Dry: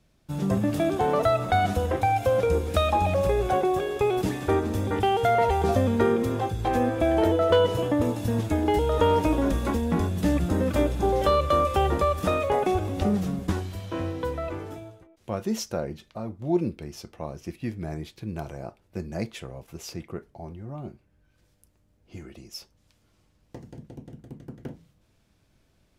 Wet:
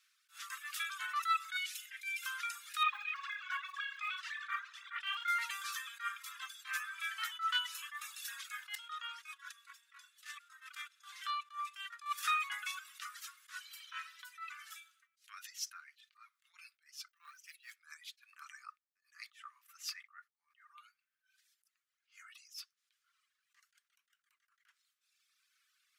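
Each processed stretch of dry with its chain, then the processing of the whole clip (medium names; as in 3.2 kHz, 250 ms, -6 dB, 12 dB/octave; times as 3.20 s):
1.56–2.21 s: Chebyshev band-stop 200–2300 Hz + whistle 2.1 kHz -56 dBFS
2.83–5.28 s: low-pass 3.2 kHz + phaser 2 Hz, delay 4.9 ms, feedback 43%
8.75–12.06 s: frequency weighting A + gate -29 dBFS, range -14 dB + compression 3:1, threshold -30 dBFS
14.19–16.54 s: compression 4:1, threshold -34 dBFS + tilt shelf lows -5.5 dB, about 880 Hz
17.08–17.76 s: companding laws mixed up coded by A + treble shelf 5.3 kHz +2.5 dB + comb 5.9 ms, depth 69%
18.33–20.67 s: gate -57 dBFS, range -21 dB + small resonant body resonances 1.2/1.8 kHz, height 9 dB, ringing for 20 ms
whole clip: reverb removal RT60 1.7 s; steep high-pass 1.2 kHz 72 dB/octave; attacks held to a fixed rise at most 220 dB/s; trim +1.5 dB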